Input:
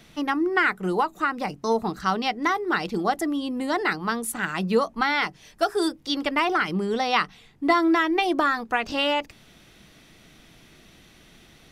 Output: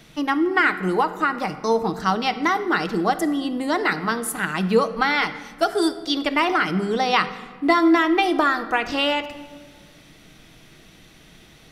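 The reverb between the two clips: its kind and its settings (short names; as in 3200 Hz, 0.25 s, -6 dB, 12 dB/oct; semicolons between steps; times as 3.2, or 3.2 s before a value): shoebox room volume 1500 m³, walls mixed, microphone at 0.56 m; gain +2.5 dB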